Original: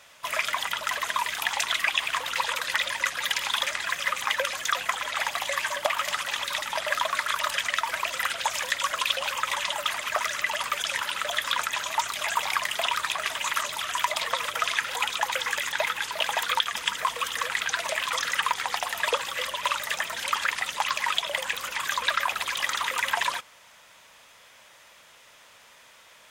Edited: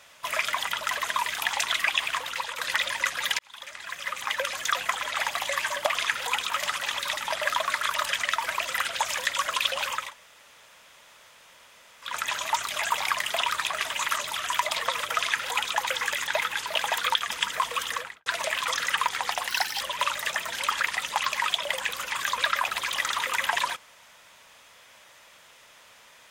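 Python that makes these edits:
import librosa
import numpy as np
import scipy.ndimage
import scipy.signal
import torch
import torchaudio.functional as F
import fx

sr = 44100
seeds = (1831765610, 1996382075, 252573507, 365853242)

y = fx.studio_fade_out(x, sr, start_s=17.33, length_s=0.38)
y = fx.edit(y, sr, fx.fade_out_to(start_s=2.04, length_s=0.54, floor_db=-8.0),
    fx.fade_in_span(start_s=3.39, length_s=1.27),
    fx.room_tone_fill(start_s=9.48, length_s=2.09, crossfade_s=0.24),
    fx.duplicate(start_s=14.64, length_s=0.55, to_s=5.95),
    fx.speed_span(start_s=18.93, length_s=0.52, speed=1.59), tone=tone)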